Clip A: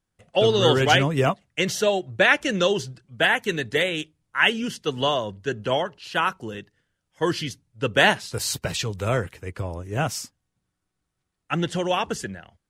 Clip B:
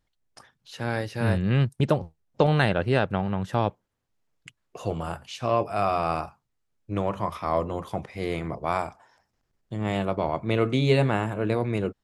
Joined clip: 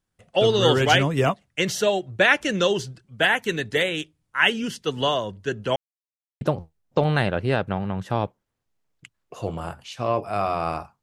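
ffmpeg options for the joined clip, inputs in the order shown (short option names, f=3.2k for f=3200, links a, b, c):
-filter_complex "[0:a]apad=whole_dur=11.02,atrim=end=11.02,asplit=2[a][b];[a]atrim=end=5.76,asetpts=PTS-STARTPTS,afade=t=out:st=5.756:d=0.004:c=hsin[c];[b]atrim=start=5.76:end=6.41,asetpts=PTS-STARTPTS,volume=0[d];[1:a]atrim=start=1.84:end=6.45,asetpts=PTS-STARTPTS,afade=t=in:d=0.004:c=hsin[e];[c][d][e]concat=n=3:v=0:a=1"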